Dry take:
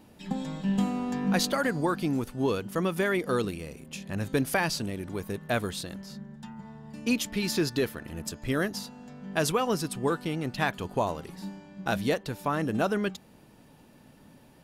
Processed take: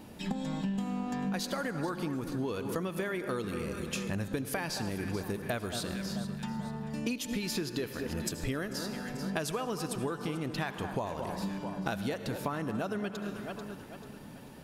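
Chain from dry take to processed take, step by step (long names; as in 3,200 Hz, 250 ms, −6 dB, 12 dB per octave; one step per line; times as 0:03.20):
delay that swaps between a low-pass and a high-pass 220 ms, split 1,500 Hz, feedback 61%, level −12 dB
on a send at −13 dB: convolution reverb RT60 1.2 s, pre-delay 63 ms
on the sum: downward compressor 12 to 1, threshold −36 dBFS, peak gain reduction 16.5 dB
level +5.5 dB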